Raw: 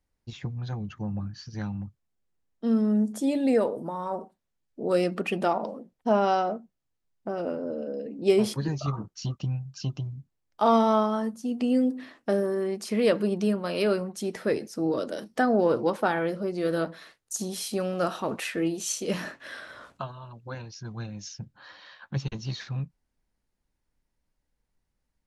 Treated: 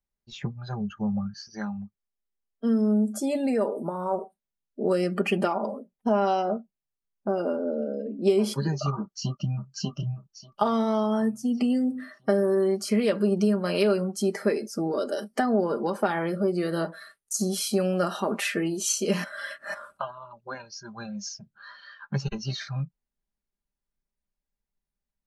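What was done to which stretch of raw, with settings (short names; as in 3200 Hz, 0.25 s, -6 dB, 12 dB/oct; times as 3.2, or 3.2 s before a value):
1.46–3.36 bell 140 Hz -12.5 dB
8.98–9.67 echo throw 0.59 s, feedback 60%, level -5.5 dB
19.24–19.74 reverse
whole clip: spectral noise reduction 15 dB; compressor 6:1, threshold -25 dBFS; comb 5 ms, depth 51%; gain +3.5 dB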